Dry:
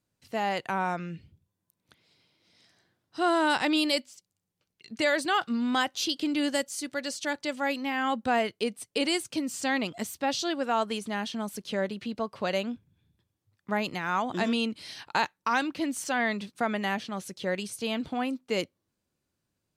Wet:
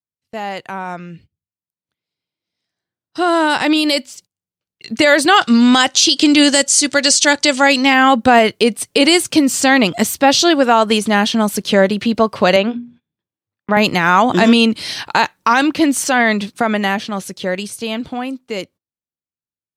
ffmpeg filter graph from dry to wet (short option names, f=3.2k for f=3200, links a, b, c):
-filter_complex "[0:a]asettb=1/sr,asplit=3[a][b][c];[a]atrim=end=5.364[d];[b]atrim=start=5.36:end=7.94,asetpts=PTS-STARTPTS,afade=t=in:d=0.004:c=qsin,afade=t=out:st=2.576:d=0.004:c=qsin,lowpass=f=8k:w=0.5412,lowpass=f=8k:w=1.3066,aemphasis=mode=production:type=75kf[e];[c]atrim=start=7.936[f];[d][e]acrossfade=d=0.004:c1=hsin:c2=qsin[g];[g][f]acrossfade=d=0.004:c1=qsin:c2=hsin,asettb=1/sr,asplit=3[h][i][j];[h]atrim=end=12.564[k];[i]atrim=start=12.56:end=13.77,asetpts=PTS-STARTPTS,afade=t=in:d=0.004:c=qsin,afade=t=out:st=1.206:d=0.004:c=qsin,highpass=190,lowpass=3.5k,bandreject=f=60:t=h:w=6,bandreject=f=120:t=h:w=6,bandreject=f=180:t=h:w=6,bandreject=f=240:t=h:w=6,bandreject=f=300:t=h:w=6,bandreject=f=360:t=h:w=6,bandreject=f=420:t=h:w=6[l];[j]atrim=start=13.766[m];[k][l]acrossfade=d=0.004:c1=hsin:c2=qsin[n];[n][m]acrossfade=d=0.004:c1=qsin:c2=hsin,alimiter=limit=-19.5dB:level=0:latency=1:release=80,dynaudnorm=f=340:g=21:m=14.5dB,agate=range=-25dB:threshold=-46dB:ratio=16:detection=peak,volume=4dB"